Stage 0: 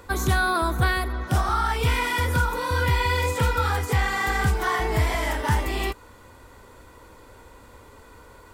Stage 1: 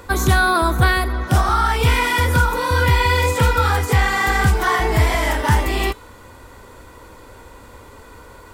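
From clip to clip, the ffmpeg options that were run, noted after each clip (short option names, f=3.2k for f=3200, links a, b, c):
-af "bandreject=f=436.7:t=h:w=4,bandreject=f=873.4:t=h:w=4,bandreject=f=1.3101k:t=h:w=4,bandreject=f=1.7468k:t=h:w=4,bandreject=f=2.1835k:t=h:w=4,bandreject=f=2.6202k:t=h:w=4,bandreject=f=3.0569k:t=h:w=4,bandreject=f=3.4936k:t=h:w=4,bandreject=f=3.9303k:t=h:w=4,bandreject=f=4.367k:t=h:w=4,bandreject=f=4.8037k:t=h:w=4,bandreject=f=5.2404k:t=h:w=4,bandreject=f=5.6771k:t=h:w=4,bandreject=f=6.1138k:t=h:w=4,bandreject=f=6.5505k:t=h:w=4,bandreject=f=6.9872k:t=h:w=4,bandreject=f=7.4239k:t=h:w=4,bandreject=f=7.8606k:t=h:w=4,bandreject=f=8.2973k:t=h:w=4,bandreject=f=8.734k:t=h:w=4,bandreject=f=9.1707k:t=h:w=4,bandreject=f=9.6074k:t=h:w=4,bandreject=f=10.0441k:t=h:w=4,bandreject=f=10.4808k:t=h:w=4,bandreject=f=10.9175k:t=h:w=4,bandreject=f=11.3542k:t=h:w=4,bandreject=f=11.7909k:t=h:w=4,bandreject=f=12.2276k:t=h:w=4,bandreject=f=12.6643k:t=h:w=4,bandreject=f=13.101k:t=h:w=4,bandreject=f=13.5377k:t=h:w=4,volume=6.5dB"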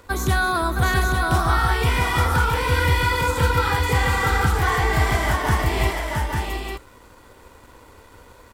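-af "aecho=1:1:249|666|851:0.15|0.596|0.562,aeval=exprs='sgn(val(0))*max(abs(val(0))-0.00447,0)':c=same,volume=-5dB"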